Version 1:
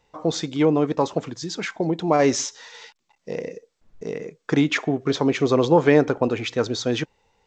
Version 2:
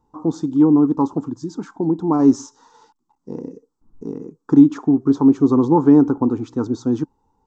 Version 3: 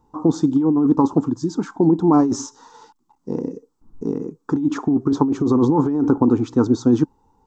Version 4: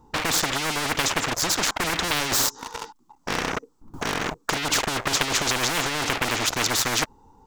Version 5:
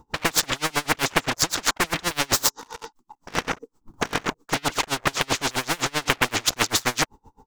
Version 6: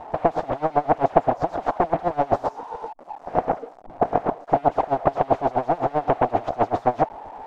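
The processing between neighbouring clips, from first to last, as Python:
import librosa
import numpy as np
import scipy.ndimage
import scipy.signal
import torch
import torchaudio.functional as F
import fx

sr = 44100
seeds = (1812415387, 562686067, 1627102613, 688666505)

y1 = fx.curve_eq(x, sr, hz=(190.0, 280.0, 610.0, 880.0, 1300.0, 2100.0, 5500.0, 8600.0), db=(0, 9, -16, 1, -5, -30, -14, -9))
y1 = F.gain(torch.from_numpy(y1), 2.0).numpy()
y2 = fx.over_compress(y1, sr, threshold_db=-17.0, ratio=-1.0)
y2 = F.gain(torch.from_numpy(y2), 2.0).numpy()
y3 = fx.leveller(y2, sr, passes=3)
y3 = fx.spectral_comp(y3, sr, ratio=10.0)
y3 = F.gain(torch.from_numpy(y3), -4.5).numpy()
y4 = y3 * 10.0 ** (-29 * (0.5 - 0.5 * np.cos(2.0 * np.pi * 7.7 * np.arange(len(y3)) / sr)) / 20.0)
y4 = F.gain(torch.from_numpy(y4), 6.0).numpy()
y5 = y4 + 0.5 * 10.0 ** (-16.0 / 20.0) * np.diff(np.sign(y4), prepend=np.sign(y4[:1]))
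y5 = fx.lowpass_res(y5, sr, hz=710.0, q=4.9)
y5 = F.gain(torch.from_numpy(y5), 1.0).numpy()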